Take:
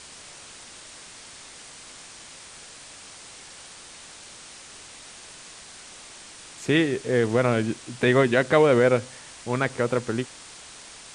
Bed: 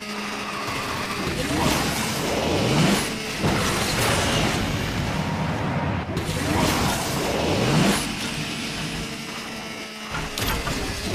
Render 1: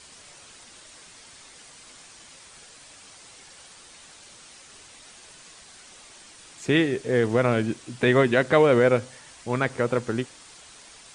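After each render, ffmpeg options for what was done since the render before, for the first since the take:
-af "afftdn=nr=6:nf=-45"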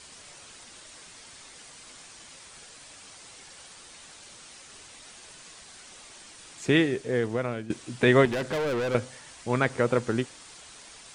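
-filter_complex "[0:a]asettb=1/sr,asplit=3[a][b][c];[a]atrim=end=8.254[d];[b]atrim=start=8.25:end=8.95,asetpts=PTS-STARTPTS,afade=t=in:d=0.004:c=qsin,afade=t=out:st=0.696:d=0.004:c=qsin,aeval=exprs='(tanh(20*val(0)+0.25)-tanh(0.25))/20':c=same[e];[c]atrim=start=8.946[f];[d][e]acrossfade=d=0.004:c1=hsin:c2=qsin[g];[g][f]acrossfade=d=0.004:c1=qsin:c2=hsin,asplit=2[h][i];[h]atrim=end=7.7,asetpts=PTS-STARTPTS,afade=t=out:st=6.65:d=1.05:silence=0.177828[j];[i]atrim=start=7.7,asetpts=PTS-STARTPTS,afade=t=in:d=0.004:c=hsin:silence=0.177828[k];[j][k]concat=n=2:v=0:a=1"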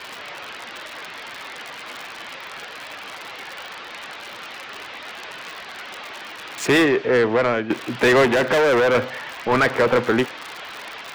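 -filter_complex "[0:a]acrossover=split=320|790|3800[a][b][c][d];[d]acrusher=bits=6:mix=0:aa=0.000001[e];[a][b][c][e]amix=inputs=4:normalize=0,asplit=2[f][g];[g]highpass=f=720:p=1,volume=26dB,asoftclip=type=tanh:threshold=-8dB[h];[f][h]amix=inputs=2:normalize=0,lowpass=f=3.2k:p=1,volume=-6dB"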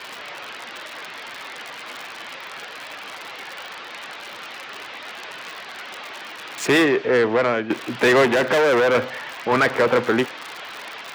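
-af "highpass=f=120:p=1"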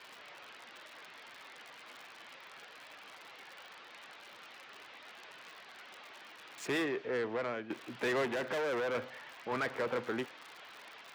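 -af "volume=-17dB"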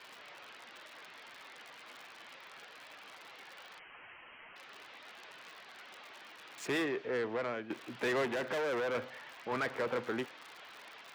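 -filter_complex "[0:a]asettb=1/sr,asplit=3[a][b][c];[a]atrim=end=3.794[d];[b]atrim=start=3.79:end=4.56,asetpts=PTS-STARTPTS,afade=t=in:d=0.004:c=qsin,afade=t=out:st=0.766:d=0.004:c=qsin,lowpass=f=2.9k:t=q:w=0.5098,lowpass=f=2.9k:t=q:w=0.6013,lowpass=f=2.9k:t=q:w=0.9,lowpass=f=2.9k:t=q:w=2.563,afreqshift=-3400[e];[c]atrim=start=4.556[f];[d][e]acrossfade=d=0.004:c1=hsin:c2=qsin[g];[g][f]acrossfade=d=0.004:c1=qsin:c2=hsin"

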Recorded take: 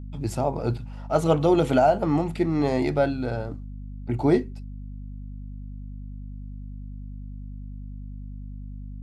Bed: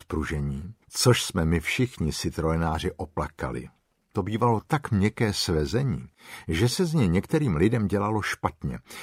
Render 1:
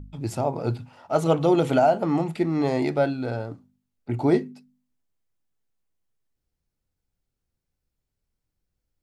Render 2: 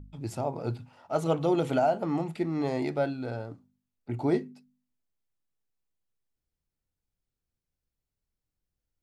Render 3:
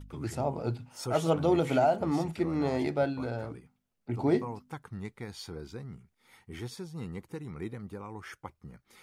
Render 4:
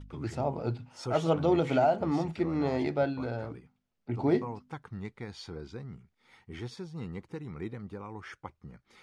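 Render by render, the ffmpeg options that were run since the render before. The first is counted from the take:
-af "bandreject=f=50:t=h:w=4,bandreject=f=100:t=h:w=4,bandreject=f=150:t=h:w=4,bandreject=f=200:t=h:w=4,bandreject=f=250:t=h:w=4"
-af "volume=-6dB"
-filter_complex "[1:a]volume=-17dB[a];[0:a][a]amix=inputs=2:normalize=0"
-af "lowpass=5.5k"

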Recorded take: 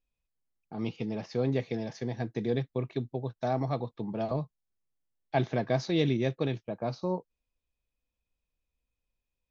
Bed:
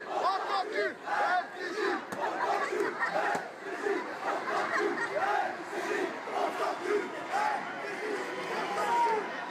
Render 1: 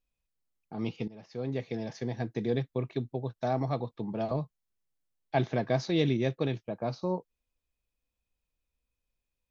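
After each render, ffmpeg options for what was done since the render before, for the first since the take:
-filter_complex "[0:a]asplit=2[a][b];[a]atrim=end=1.08,asetpts=PTS-STARTPTS,afade=t=out:st=1.076:d=0.004:c=hsin:silence=0.11885[c];[b]atrim=start=1.08,asetpts=PTS-STARTPTS,afade=t=in:d=0.84:silence=0.11885[d];[c][d]concat=n=2:v=0:a=1"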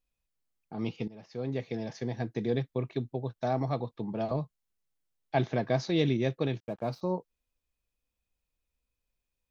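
-filter_complex "[0:a]asettb=1/sr,asplit=3[a][b][c];[a]atrim=end=6.604[d];[b]atrim=start=6.6:end=7.01,asetpts=PTS-STARTPTS,afade=t=in:d=0.004:c=qsin,afade=t=out:st=0.406:d=0.004:c=qsin,aeval=exprs='sgn(val(0))*max(abs(val(0))-0.00141,0)':c=same[e];[c]atrim=start=7.006[f];[d][e]acrossfade=d=0.004:c1=hsin:c2=qsin[g];[g][f]acrossfade=d=0.004:c1=qsin:c2=hsin"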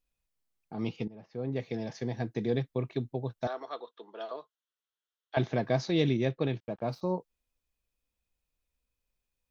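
-filter_complex "[0:a]asplit=3[a][b][c];[a]afade=t=out:st=1.03:d=0.02[d];[b]lowpass=f=1.4k:p=1,afade=t=in:st=1.03:d=0.02,afade=t=out:st=1.55:d=0.02[e];[c]afade=t=in:st=1.55:d=0.02[f];[d][e][f]amix=inputs=3:normalize=0,asettb=1/sr,asplit=3[g][h][i];[g]atrim=end=3.474[j];[h]atrim=start=3.47:end=5.37,asetpts=PTS-STARTPTS,afade=t=in:d=0.004:c=qsin,afade=t=out:st=1.896:d=0.004:c=qsin,highpass=f=460:w=0.5412,highpass=f=460:w=1.3066,equalizer=f=560:t=q:w=4:g=-7,equalizer=f=800:t=q:w=4:g=-10,equalizer=f=1.4k:t=q:w=4:g=4,equalizer=f=2.3k:t=q:w=4:g=-10,equalizer=f=3.3k:t=q:w=4:g=7,equalizer=f=4.8k:t=q:w=4:g=-9,lowpass=f=5.8k:w=0.5412,lowpass=f=5.8k:w=1.3066[k];[i]atrim=start=5.366[l];[j][k]acrossfade=d=0.004:c1=hsin:c2=qsin[m];[m][l]acrossfade=d=0.004:c1=qsin:c2=hsin,asettb=1/sr,asplit=3[n][o][p];[n]atrim=end=6.254[q];[o]atrim=start=6.25:end=6.89,asetpts=PTS-STARTPTS,afade=t=in:d=0.004:c=qsin,afade=t=out:st=0.636:d=0.004:c=qsin,lowpass=4.4k[r];[p]atrim=start=6.886[s];[q][r]acrossfade=d=0.004:c1=hsin:c2=qsin[t];[t][s]acrossfade=d=0.004:c1=qsin:c2=hsin"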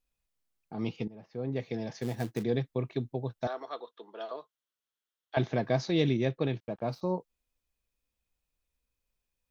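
-filter_complex "[0:a]asplit=3[a][b][c];[a]afade=t=out:st=2.01:d=0.02[d];[b]acrusher=bits=4:mode=log:mix=0:aa=0.000001,afade=t=in:st=2.01:d=0.02,afade=t=out:st=2.42:d=0.02[e];[c]afade=t=in:st=2.42:d=0.02[f];[d][e][f]amix=inputs=3:normalize=0"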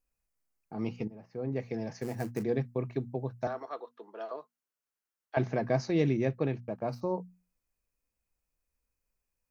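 -af "equalizer=f=3.5k:t=o:w=0.42:g=-14.5,bandreject=f=60:t=h:w=6,bandreject=f=120:t=h:w=6,bandreject=f=180:t=h:w=6,bandreject=f=240:t=h:w=6"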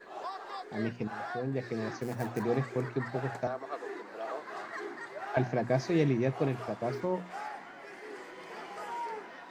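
-filter_complex "[1:a]volume=-10.5dB[a];[0:a][a]amix=inputs=2:normalize=0"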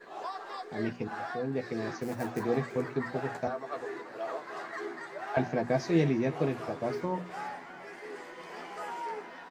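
-filter_complex "[0:a]asplit=2[a][b];[b]adelay=12,volume=-6dB[c];[a][c]amix=inputs=2:normalize=0,aecho=1:1:335|670|1005|1340:0.0891|0.0508|0.029|0.0165"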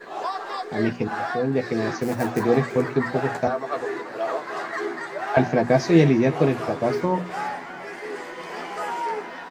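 -af "volume=10dB"

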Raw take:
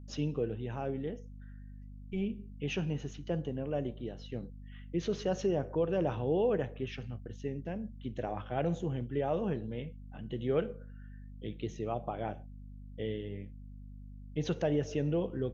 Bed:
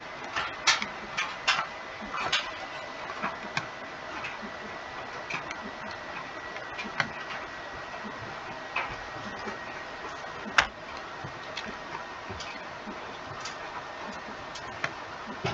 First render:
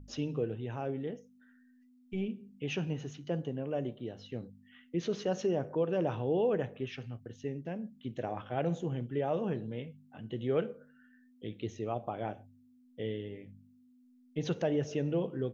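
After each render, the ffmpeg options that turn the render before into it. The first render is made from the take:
-af "bandreject=f=50:t=h:w=4,bandreject=f=100:t=h:w=4,bandreject=f=150:t=h:w=4,bandreject=f=200:t=h:w=4"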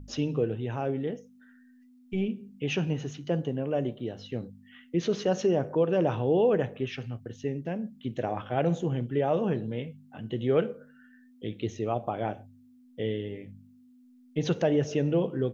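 -af "volume=6dB"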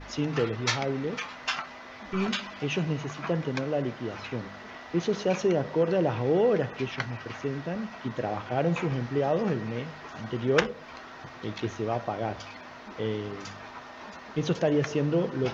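-filter_complex "[1:a]volume=-5dB[a];[0:a][a]amix=inputs=2:normalize=0"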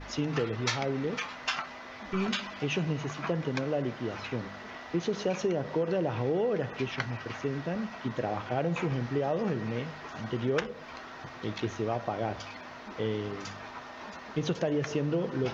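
-af "acompressor=threshold=-25dB:ratio=6"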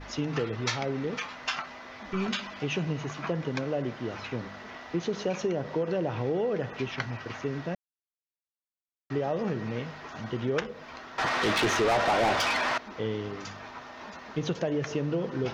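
-filter_complex "[0:a]asettb=1/sr,asplit=3[a][b][c];[a]atrim=end=11.184[d];[b]atrim=start=11.18:end=12.78,asetpts=PTS-STARTPTS,afade=t=in:d=0.004:c=qsin,afade=t=out:st=1.596:d=0.004:c=qsin,asplit=2[e][f];[f]highpass=f=720:p=1,volume=28dB,asoftclip=type=tanh:threshold=-17dB[g];[e][g]amix=inputs=2:normalize=0,lowpass=f=6.4k:p=1,volume=-6dB[h];[c]atrim=start=12.776[i];[d][h]acrossfade=d=0.004:c1=hsin:c2=qsin[j];[j][i]acrossfade=d=0.004:c1=qsin:c2=hsin,asplit=3[k][l][m];[k]atrim=end=7.75,asetpts=PTS-STARTPTS,afade=t=out:st=7.746:d=0.004:c=hsin[n];[l]atrim=start=7.75:end=9.1,asetpts=PTS-STARTPTS,volume=0[o];[m]atrim=start=9.1,asetpts=PTS-STARTPTS,afade=t=in:d=0.004:c=hsin[p];[n][o][p]concat=n=3:v=0:a=1"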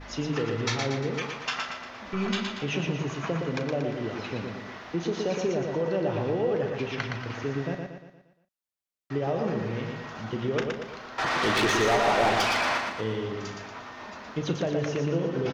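-filter_complex "[0:a]asplit=2[a][b];[b]adelay=36,volume=-11dB[c];[a][c]amix=inputs=2:normalize=0,asplit=2[d][e];[e]aecho=0:1:117|234|351|468|585|702:0.596|0.28|0.132|0.0618|0.0291|0.0137[f];[d][f]amix=inputs=2:normalize=0"

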